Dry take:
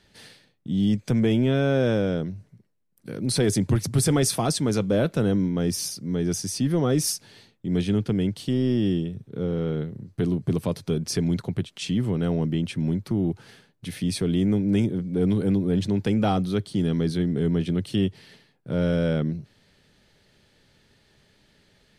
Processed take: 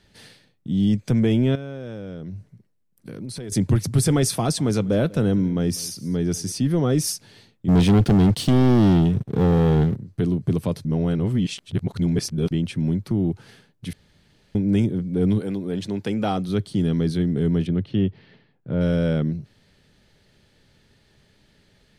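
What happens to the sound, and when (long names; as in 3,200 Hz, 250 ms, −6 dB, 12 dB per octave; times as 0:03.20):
0:01.55–0:03.52: downward compressor 8 to 1, threshold −32 dBFS
0:04.31–0:06.52: single-tap delay 197 ms −21 dB
0:07.68–0:09.96: leveller curve on the samples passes 3
0:10.85–0:12.51: reverse
0:13.93–0:14.55: fill with room tone
0:15.38–0:16.48: high-pass filter 520 Hz → 220 Hz 6 dB per octave
0:17.67–0:18.81: high-frequency loss of the air 290 metres
whole clip: low-shelf EQ 210 Hz +4.5 dB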